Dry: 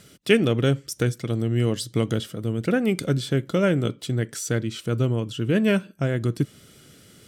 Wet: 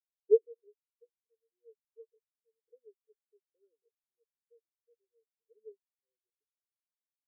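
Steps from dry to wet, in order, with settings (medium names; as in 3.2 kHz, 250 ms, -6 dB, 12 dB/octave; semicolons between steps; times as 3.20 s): bit crusher 5-bit; two resonant band-passes 710 Hz, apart 1.3 oct; spectral contrast expander 4:1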